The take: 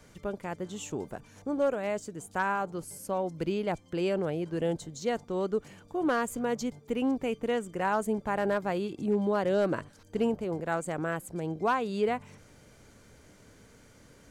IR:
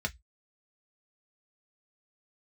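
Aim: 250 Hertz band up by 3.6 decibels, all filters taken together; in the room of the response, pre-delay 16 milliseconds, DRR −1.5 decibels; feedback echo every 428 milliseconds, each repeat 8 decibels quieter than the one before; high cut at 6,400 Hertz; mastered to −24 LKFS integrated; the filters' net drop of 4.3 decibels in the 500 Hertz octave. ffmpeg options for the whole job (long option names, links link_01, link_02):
-filter_complex "[0:a]lowpass=6400,equalizer=frequency=250:width_type=o:gain=6.5,equalizer=frequency=500:width_type=o:gain=-7.5,aecho=1:1:428|856|1284|1712|2140:0.398|0.159|0.0637|0.0255|0.0102,asplit=2[link_01][link_02];[1:a]atrim=start_sample=2205,adelay=16[link_03];[link_02][link_03]afir=irnorm=-1:irlink=0,volume=-3dB[link_04];[link_01][link_04]amix=inputs=2:normalize=0,volume=2dB"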